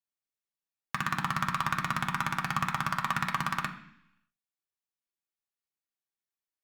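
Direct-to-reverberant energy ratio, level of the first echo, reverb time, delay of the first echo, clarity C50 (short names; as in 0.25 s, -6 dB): 2.0 dB, none, 0.70 s, none, 11.5 dB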